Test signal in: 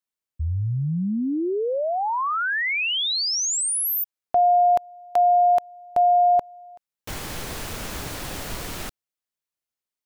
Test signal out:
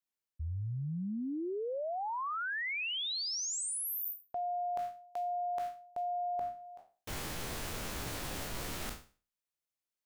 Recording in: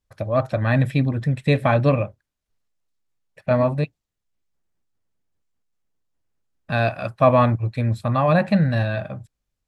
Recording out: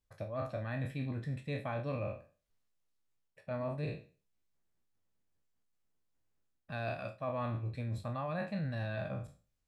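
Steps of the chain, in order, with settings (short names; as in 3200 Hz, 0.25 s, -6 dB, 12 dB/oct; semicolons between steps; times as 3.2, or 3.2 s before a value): spectral trails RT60 0.37 s; reverse; compressor 6:1, threshold -30 dBFS; reverse; gain -5.5 dB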